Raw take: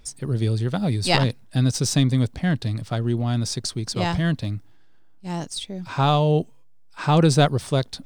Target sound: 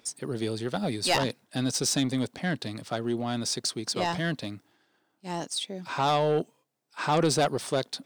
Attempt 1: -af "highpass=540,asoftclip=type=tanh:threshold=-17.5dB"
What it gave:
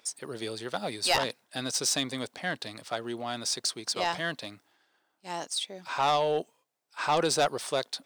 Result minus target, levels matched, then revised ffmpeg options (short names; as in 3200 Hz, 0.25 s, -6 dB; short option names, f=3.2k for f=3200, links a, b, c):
250 Hz band -6.5 dB
-af "highpass=270,asoftclip=type=tanh:threshold=-17.5dB"